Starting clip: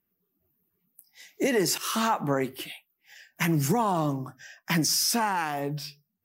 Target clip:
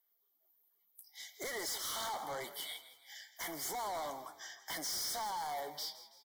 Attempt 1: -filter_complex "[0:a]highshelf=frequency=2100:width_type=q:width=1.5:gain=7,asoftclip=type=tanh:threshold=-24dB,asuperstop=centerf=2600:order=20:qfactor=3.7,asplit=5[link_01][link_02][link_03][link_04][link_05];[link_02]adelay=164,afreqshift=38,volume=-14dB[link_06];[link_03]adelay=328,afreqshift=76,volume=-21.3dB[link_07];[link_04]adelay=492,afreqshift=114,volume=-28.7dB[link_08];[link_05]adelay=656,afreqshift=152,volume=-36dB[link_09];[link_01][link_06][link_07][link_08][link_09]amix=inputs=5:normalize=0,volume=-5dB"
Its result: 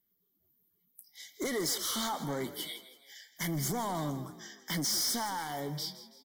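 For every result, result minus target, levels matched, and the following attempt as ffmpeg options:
1,000 Hz band −4.0 dB; soft clipping: distortion −4 dB
-filter_complex "[0:a]highpass=frequency=740:width_type=q:width=2.2,highshelf=frequency=2100:width_type=q:width=1.5:gain=7,asoftclip=type=tanh:threshold=-24dB,asuperstop=centerf=2600:order=20:qfactor=3.7,asplit=5[link_01][link_02][link_03][link_04][link_05];[link_02]adelay=164,afreqshift=38,volume=-14dB[link_06];[link_03]adelay=328,afreqshift=76,volume=-21.3dB[link_07];[link_04]adelay=492,afreqshift=114,volume=-28.7dB[link_08];[link_05]adelay=656,afreqshift=152,volume=-36dB[link_09];[link_01][link_06][link_07][link_08][link_09]amix=inputs=5:normalize=0,volume=-5dB"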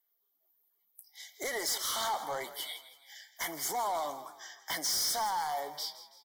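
soft clipping: distortion −4 dB
-filter_complex "[0:a]highpass=frequency=740:width_type=q:width=2.2,highshelf=frequency=2100:width_type=q:width=1.5:gain=7,asoftclip=type=tanh:threshold=-32.5dB,asuperstop=centerf=2600:order=20:qfactor=3.7,asplit=5[link_01][link_02][link_03][link_04][link_05];[link_02]adelay=164,afreqshift=38,volume=-14dB[link_06];[link_03]adelay=328,afreqshift=76,volume=-21.3dB[link_07];[link_04]adelay=492,afreqshift=114,volume=-28.7dB[link_08];[link_05]adelay=656,afreqshift=152,volume=-36dB[link_09];[link_01][link_06][link_07][link_08][link_09]amix=inputs=5:normalize=0,volume=-5dB"

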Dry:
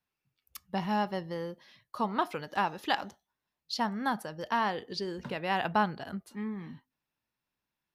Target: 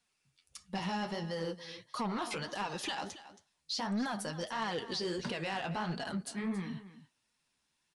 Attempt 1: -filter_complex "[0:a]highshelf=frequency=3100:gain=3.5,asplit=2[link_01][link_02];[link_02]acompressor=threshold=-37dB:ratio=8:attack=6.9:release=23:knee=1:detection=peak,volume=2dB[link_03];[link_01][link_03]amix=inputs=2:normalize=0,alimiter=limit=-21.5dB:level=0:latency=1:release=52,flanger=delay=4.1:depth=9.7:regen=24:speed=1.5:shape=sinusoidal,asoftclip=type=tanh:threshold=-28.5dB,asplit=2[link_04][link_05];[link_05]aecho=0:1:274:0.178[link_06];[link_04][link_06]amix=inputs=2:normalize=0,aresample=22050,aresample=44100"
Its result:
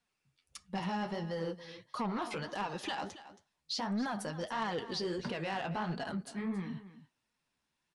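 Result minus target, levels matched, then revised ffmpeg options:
downward compressor: peak gain reduction +4.5 dB; 8,000 Hz band −4.0 dB
-filter_complex "[0:a]highshelf=frequency=3100:gain=12.5,asplit=2[link_01][link_02];[link_02]acompressor=threshold=-30dB:ratio=8:attack=6.9:release=23:knee=1:detection=peak,volume=2dB[link_03];[link_01][link_03]amix=inputs=2:normalize=0,alimiter=limit=-21.5dB:level=0:latency=1:release=52,flanger=delay=4.1:depth=9.7:regen=24:speed=1.5:shape=sinusoidal,asoftclip=type=tanh:threshold=-28.5dB,asplit=2[link_04][link_05];[link_05]aecho=0:1:274:0.178[link_06];[link_04][link_06]amix=inputs=2:normalize=0,aresample=22050,aresample=44100"

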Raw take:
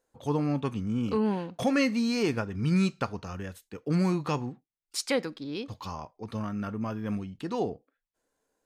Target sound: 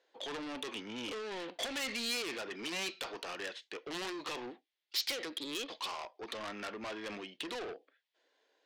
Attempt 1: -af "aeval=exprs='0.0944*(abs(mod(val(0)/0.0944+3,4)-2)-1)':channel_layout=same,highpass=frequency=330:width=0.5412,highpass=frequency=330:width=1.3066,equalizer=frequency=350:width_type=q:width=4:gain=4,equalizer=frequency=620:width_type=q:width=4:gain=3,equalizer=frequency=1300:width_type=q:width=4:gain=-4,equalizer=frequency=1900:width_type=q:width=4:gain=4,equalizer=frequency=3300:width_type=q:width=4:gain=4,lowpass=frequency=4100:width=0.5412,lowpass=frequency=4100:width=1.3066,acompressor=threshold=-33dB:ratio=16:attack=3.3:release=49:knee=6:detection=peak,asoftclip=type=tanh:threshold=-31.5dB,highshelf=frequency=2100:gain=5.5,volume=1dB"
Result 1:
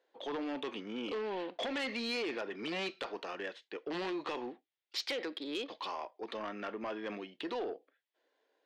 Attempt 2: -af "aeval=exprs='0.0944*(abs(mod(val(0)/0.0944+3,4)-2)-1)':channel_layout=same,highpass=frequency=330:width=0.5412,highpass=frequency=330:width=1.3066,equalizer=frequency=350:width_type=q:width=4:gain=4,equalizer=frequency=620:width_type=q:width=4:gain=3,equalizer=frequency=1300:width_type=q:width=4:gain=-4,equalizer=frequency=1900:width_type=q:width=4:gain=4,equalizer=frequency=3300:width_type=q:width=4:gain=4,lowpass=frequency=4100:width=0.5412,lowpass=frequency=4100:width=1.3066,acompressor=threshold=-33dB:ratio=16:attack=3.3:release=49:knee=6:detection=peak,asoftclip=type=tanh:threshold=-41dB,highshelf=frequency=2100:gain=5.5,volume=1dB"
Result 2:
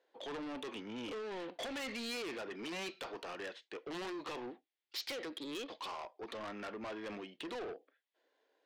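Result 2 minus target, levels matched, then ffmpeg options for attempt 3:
4,000 Hz band −3.0 dB
-af "aeval=exprs='0.0944*(abs(mod(val(0)/0.0944+3,4)-2)-1)':channel_layout=same,highpass=frequency=330:width=0.5412,highpass=frequency=330:width=1.3066,equalizer=frequency=350:width_type=q:width=4:gain=4,equalizer=frequency=620:width_type=q:width=4:gain=3,equalizer=frequency=1300:width_type=q:width=4:gain=-4,equalizer=frequency=1900:width_type=q:width=4:gain=4,equalizer=frequency=3300:width_type=q:width=4:gain=4,lowpass=frequency=4100:width=0.5412,lowpass=frequency=4100:width=1.3066,acompressor=threshold=-33dB:ratio=16:attack=3.3:release=49:knee=6:detection=peak,asoftclip=type=tanh:threshold=-41dB,highshelf=frequency=2100:gain=15,volume=1dB"

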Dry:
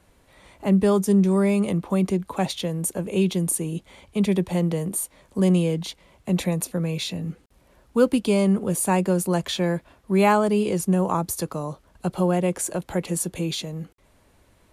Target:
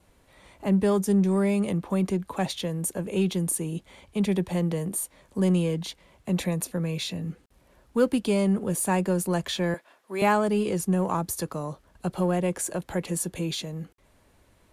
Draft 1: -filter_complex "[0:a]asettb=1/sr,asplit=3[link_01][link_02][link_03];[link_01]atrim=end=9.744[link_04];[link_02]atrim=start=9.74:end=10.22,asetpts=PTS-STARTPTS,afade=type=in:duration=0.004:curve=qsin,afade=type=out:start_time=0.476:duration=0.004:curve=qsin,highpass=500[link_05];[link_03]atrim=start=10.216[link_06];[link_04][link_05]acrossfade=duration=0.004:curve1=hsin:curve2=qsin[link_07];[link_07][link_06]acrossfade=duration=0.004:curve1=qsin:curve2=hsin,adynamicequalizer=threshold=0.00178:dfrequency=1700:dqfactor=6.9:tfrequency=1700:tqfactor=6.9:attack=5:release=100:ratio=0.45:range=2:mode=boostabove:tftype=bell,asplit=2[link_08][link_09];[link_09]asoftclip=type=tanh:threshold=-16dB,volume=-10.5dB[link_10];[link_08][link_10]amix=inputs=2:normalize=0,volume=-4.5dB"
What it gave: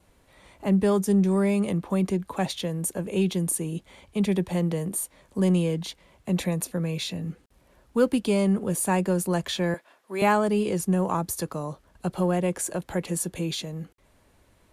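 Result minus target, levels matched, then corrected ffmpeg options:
soft clipping: distortion −7 dB
-filter_complex "[0:a]asettb=1/sr,asplit=3[link_01][link_02][link_03];[link_01]atrim=end=9.744[link_04];[link_02]atrim=start=9.74:end=10.22,asetpts=PTS-STARTPTS,afade=type=in:duration=0.004:curve=qsin,afade=type=out:start_time=0.476:duration=0.004:curve=qsin,highpass=500[link_05];[link_03]atrim=start=10.216[link_06];[link_04][link_05]acrossfade=duration=0.004:curve1=hsin:curve2=qsin[link_07];[link_07][link_06]acrossfade=duration=0.004:curve1=qsin:curve2=hsin,adynamicequalizer=threshold=0.00178:dfrequency=1700:dqfactor=6.9:tfrequency=1700:tqfactor=6.9:attack=5:release=100:ratio=0.45:range=2:mode=boostabove:tftype=bell,asplit=2[link_08][link_09];[link_09]asoftclip=type=tanh:threshold=-24dB,volume=-10.5dB[link_10];[link_08][link_10]amix=inputs=2:normalize=0,volume=-4.5dB"

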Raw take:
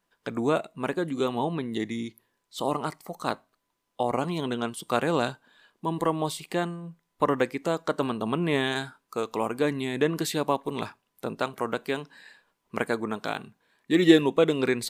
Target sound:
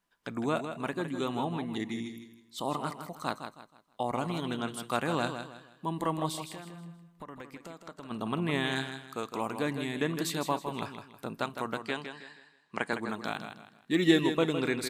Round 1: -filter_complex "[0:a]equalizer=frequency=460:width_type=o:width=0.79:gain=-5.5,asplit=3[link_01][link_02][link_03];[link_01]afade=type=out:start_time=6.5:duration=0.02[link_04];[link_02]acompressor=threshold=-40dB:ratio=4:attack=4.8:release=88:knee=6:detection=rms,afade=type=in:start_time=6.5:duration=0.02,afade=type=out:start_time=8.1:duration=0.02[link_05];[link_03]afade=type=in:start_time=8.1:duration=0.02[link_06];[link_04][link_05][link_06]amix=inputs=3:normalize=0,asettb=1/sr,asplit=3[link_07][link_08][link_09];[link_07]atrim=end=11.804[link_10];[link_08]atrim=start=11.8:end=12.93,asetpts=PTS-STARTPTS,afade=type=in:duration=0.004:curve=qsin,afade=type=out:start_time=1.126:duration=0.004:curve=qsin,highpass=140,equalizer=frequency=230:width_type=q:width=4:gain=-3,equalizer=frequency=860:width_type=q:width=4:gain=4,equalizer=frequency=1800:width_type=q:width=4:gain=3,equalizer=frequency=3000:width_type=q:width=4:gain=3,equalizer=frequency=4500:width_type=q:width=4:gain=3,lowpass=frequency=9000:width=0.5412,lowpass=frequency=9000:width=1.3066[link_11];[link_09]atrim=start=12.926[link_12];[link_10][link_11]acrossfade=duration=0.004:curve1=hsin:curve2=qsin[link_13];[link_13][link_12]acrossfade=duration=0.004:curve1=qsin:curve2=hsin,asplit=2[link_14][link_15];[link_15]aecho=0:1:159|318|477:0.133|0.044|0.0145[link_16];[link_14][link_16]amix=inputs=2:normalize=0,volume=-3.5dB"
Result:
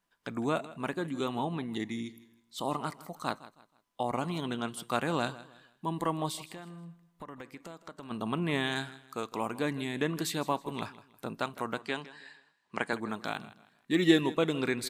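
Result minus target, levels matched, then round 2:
echo-to-direct −9 dB
-filter_complex "[0:a]equalizer=frequency=460:width_type=o:width=0.79:gain=-5.5,asplit=3[link_01][link_02][link_03];[link_01]afade=type=out:start_time=6.5:duration=0.02[link_04];[link_02]acompressor=threshold=-40dB:ratio=4:attack=4.8:release=88:knee=6:detection=rms,afade=type=in:start_time=6.5:duration=0.02,afade=type=out:start_time=8.1:duration=0.02[link_05];[link_03]afade=type=in:start_time=8.1:duration=0.02[link_06];[link_04][link_05][link_06]amix=inputs=3:normalize=0,asettb=1/sr,asplit=3[link_07][link_08][link_09];[link_07]atrim=end=11.804[link_10];[link_08]atrim=start=11.8:end=12.93,asetpts=PTS-STARTPTS,afade=type=in:duration=0.004:curve=qsin,afade=type=out:start_time=1.126:duration=0.004:curve=qsin,highpass=140,equalizer=frequency=230:width_type=q:width=4:gain=-3,equalizer=frequency=860:width_type=q:width=4:gain=4,equalizer=frequency=1800:width_type=q:width=4:gain=3,equalizer=frequency=3000:width_type=q:width=4:gain=3,equalizer=frequency=4500:width_type=q:width=4:gain=3,lowpass=frequency=9000:width=0.5412,lowpass=frequency=9000:width=1.3066[link_11];[link_09]atrim=start=12.926[link_12];[link_10][link_11]acrossfade=duration=0.004:curve1=hsin:curve2=qsin[link_13];[link_13][link_12]acrossfade=duration=0.004:curve1=qsin:curve2=hsin,asplit=2[link_14][link_15];[link_15]aecho=0:1:159|318|477|636:0.376|0.124|0.0409|0.0135[link_16];[link_14][link_16]amix=inputs=2:normalize=0,volume=-3.5dB"

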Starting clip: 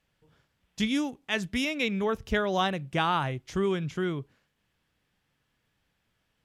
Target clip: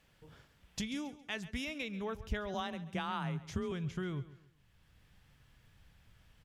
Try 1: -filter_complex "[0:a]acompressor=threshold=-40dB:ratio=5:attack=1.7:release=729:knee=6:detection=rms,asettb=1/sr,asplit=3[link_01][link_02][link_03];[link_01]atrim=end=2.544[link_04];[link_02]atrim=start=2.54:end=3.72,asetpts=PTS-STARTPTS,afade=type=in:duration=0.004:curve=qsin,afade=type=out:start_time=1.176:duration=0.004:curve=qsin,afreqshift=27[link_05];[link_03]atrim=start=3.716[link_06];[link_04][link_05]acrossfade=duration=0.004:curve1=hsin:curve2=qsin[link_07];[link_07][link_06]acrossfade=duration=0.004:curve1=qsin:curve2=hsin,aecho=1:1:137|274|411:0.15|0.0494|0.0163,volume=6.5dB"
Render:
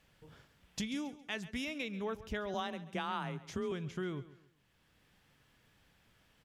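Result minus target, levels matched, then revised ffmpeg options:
125 Hz band −4.0 dB
-filter_complex "[0:a]acompressor=threshold=-40dB:ratio=5:attack=1.7:release=729:knee=6:detection=rms,asubboost=boost=4:cutoff=140,asettb=1/sr,asplit=3[link_01][link_02][link_03];[link_01]atrim=end=2.544[link_04];[link_02]atrim=start=2.54:end=3.72,asetpts=PTS-STARTPTS,afade=type=in:duration=0.004:curve=qsin,afade=type=out:start_time=1.176:duration=0.004:curve=qsin,afreqshift=27[link_05];[link_03]atrim=start=3.716[link_06];[link_04][link_05]acrossfade=duration=0.004:curve1=hsin:curve2=qsin[link_07];[link_07][link_06]acrossfade=duration=0.004:curve1=qsin:curve2=hsin,aecho=1:1:137|274|411:0.15|0.0494|0.0163,volume=6.5dB"

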